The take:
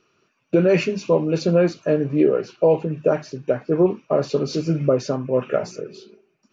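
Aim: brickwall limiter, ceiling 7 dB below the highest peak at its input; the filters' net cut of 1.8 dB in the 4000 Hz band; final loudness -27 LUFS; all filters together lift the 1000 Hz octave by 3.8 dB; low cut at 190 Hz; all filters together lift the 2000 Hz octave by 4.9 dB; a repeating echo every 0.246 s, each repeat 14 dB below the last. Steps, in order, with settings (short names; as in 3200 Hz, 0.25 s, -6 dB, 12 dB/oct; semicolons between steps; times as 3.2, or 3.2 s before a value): HPF 190 Hz; bell 1000 Hz +3.5 dB; bell 2000 Hz +7 dB; bell 4000 Hz -5 dB; limiter -12 dBFS; feedback echo 0.246 s, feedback 20%, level -14 dB; gain -3.5 dB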